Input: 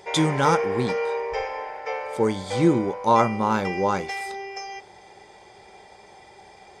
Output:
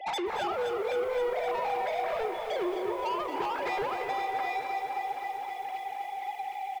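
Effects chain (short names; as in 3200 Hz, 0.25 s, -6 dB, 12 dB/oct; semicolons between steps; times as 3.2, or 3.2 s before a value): sine-wave speech; steep high-pass 260 Hz 96 dB/oct; bell 890 Hz +6 dB 1 oct; comb 2.4 ms, depth 38%; compressor 12:1, threshold -31 dBFS, peak gain reduction 22.5 dB; soft clip -35.5 dBFS, distortion -11 dB; echo 0.223 s -12 dB; on a send at -11 dB: reverb RT60 0.50 s, pre-delay 3 ms; on the sum: lo-fi delay 0.26 s, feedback 80%, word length 10-bit, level -8 dB; gain +6 dB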